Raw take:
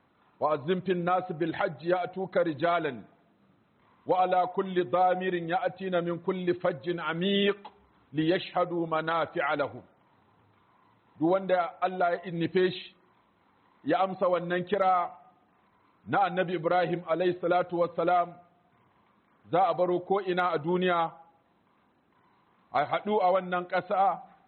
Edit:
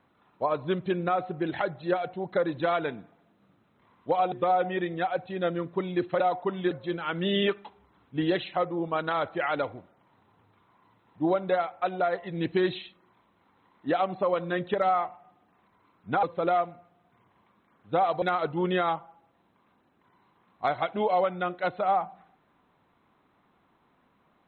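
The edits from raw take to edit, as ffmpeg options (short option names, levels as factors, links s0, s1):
-filter_complex "[0:a]asplit=6[s0][s1][s2][s3][s4][s5];[s0]atrim=end=4.322[s6];[s1]atrim=start=4.828:end=6.712[s7];[s2]atrim=start=4.318:end=4.832[s8];[s3]atrim=start=6.708:end=16.232[s9];[s4]atrim=start=17.828:end=19.822[s10];[s5]atrim=start=20.328[s11];[s6][s7]acrossfade=d=0.004:c1=hsin:c2=hsin[s12];[s12][s8]acrossfade=d=0.004:c1=hsin:c2=hsin[s13];[s13][s9]acrossfade=d=0.004:c1=hsin:c2=hsin[s14];[s14][s10]acrossfade=d=0.004:c1=hsin:c2=hsin[s15];[s15][s11]acrossfade=d=0.004:c1=hsin:c2=hsin"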